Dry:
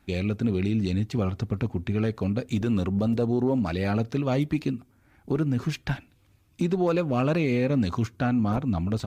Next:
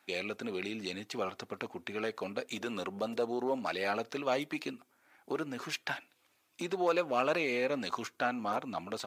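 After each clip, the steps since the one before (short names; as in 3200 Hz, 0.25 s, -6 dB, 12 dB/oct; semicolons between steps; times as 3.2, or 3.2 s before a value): HPF 570 Hz 12 dB/oct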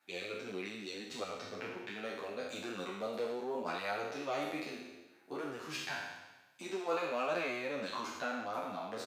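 spectral trails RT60 1.19 s; endless flanger 9.8 ms +0.85 Hz; gain -5 dB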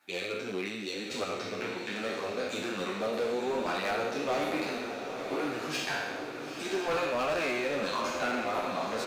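hard clip -33.5 dBFS, distortion -14 dB; diffused feedback echo 0.909 s, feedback 61%, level -7 dB; gain +7 dB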